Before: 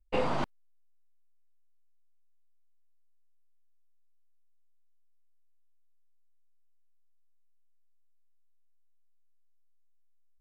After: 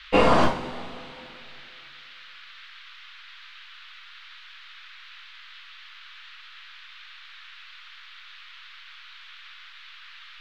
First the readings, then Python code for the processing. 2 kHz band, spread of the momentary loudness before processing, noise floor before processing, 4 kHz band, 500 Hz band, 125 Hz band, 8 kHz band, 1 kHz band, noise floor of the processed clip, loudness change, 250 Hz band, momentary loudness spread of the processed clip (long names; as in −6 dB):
+14.5 dB, 7 LU, −62 dBFS, +16.0 dB, +11.5 dB, +10.5 dB, can't be measured, +13.0 dB, −47 dBFS, +9.0 dB, +13.0 dB, 15 LU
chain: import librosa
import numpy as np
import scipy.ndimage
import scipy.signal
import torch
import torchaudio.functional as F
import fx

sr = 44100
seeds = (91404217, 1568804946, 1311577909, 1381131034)

y = fx.rev_double_slope(x, sr, seeds[0], early_s=0.38, late_s=2.6, knee_db=-18, drr_db=-4.0)
y = fx.dmg_noise_band(y, sr, seeds[1], low_hz=1200.0, high_hz=3900.0, level_db=-55.0)
y = y * 10.0 ** (8.0 / 20.0)